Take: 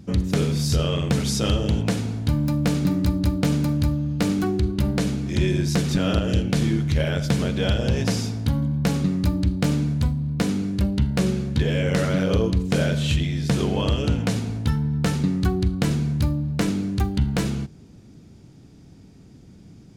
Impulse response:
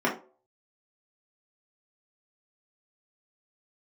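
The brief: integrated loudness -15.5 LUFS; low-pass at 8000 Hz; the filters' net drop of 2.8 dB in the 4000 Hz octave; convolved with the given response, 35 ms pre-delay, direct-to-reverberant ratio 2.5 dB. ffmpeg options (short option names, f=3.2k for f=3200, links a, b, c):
-filter_complex "[0:a]lowpass=8k,equalizer=f=4k:t=o:g=-3.5,asplit=2[a][b];[1:a]atrim=start_sample=2205,adelay=35[c];[b][c]afir=irnorm=-1:irlink=0,volume=-16dB[d];[a][d]amix=inputs=2:normalize=0,volume=5.5dB"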